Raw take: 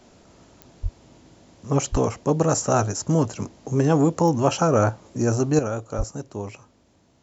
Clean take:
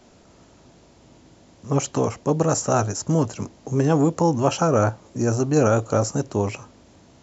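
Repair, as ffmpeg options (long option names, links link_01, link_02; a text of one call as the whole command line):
ffmpeg -i in.wav -filter_complex "[0:a]adeclick=threshold=4,asplit=3[link_01][link_02][link_03];[link_01]afade=type=out:start_time=0.82:duration=0.02[link_04];[link_02]highpass=frequency=140:width=0.5412,highpass=frequency=140:width=1.3066,afade=type=in:start_time=0.82:duration=0.02,afade=type=out:start_time=0.94:duration=0.02[link_05];[link_03]afade=type=in:start_time=0.94:duration=0.02[link_06];[link_04][link_05][link_06]amix=inputs=3:normalize=0,asplit=3[link_07][link_08][link_09];[link_07]afade=type=out:start_time=1.91:duration=0.02[link_10];[link_08]highpass=frequency=140:width=0.5412,highpass=frequency=140:width=1.3066,afade=type=in:start_time=1.91:duration=0.02,afade=type=out:start_time=2.03:duration=0.02[link_11];[link_09]afade=type=in:start_time=2.03:duration=0.02[link_12];[link_10][link_11][link_12]amix=inputs=3:normalize=0,asplit=3[link_13][link_14][link_15];[link_13]afade=type=out:start_time=5.97:duration=0.02[link_16];[link_14]highpass=frequency=140:width=0.5412,highpass=frequency=140:width=1.3066,afade=type=in:start_time=5.97:duration=0.02,afade=type=out:start_time=6.09:duration=0.02[link_17];[link_15]afade=type=in:start_time=6.09:duration=0.02[link_18];[link_16][link_17][link_18]amix=inputs=3:normalize=0,asetnsamples=nb_out_samples=441:pad=0,asendcmd='5.59 volume volume 9dB',volume=0dB" out.wav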